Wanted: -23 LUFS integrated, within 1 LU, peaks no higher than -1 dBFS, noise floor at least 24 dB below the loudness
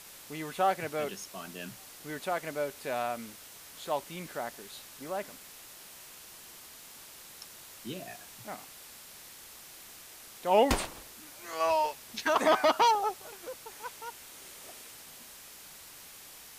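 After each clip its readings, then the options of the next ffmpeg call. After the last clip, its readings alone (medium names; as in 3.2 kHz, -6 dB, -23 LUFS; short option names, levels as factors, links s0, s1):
noise floor -50 dBFS; noise floor target -56 dBFS; loudness -32.0 LUFS; peak level -11.5 dBFS; loudness target -23.0 LUFS
-> -af "afftdn=nr=6:nf=-50"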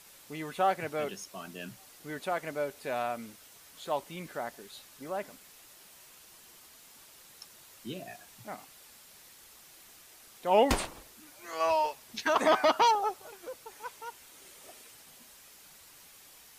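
noise floor -55 dBFS; loudness -31.0 LUFS; peak level -11.5 dBFS; loudness target -23.0 LUFS
-> -af "volume=2.51"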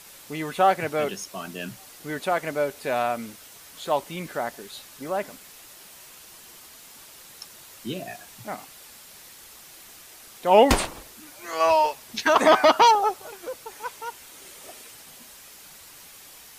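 loudness -23.0 LUFS; peak level -3.5 dBFS; noise floor -47 dBFS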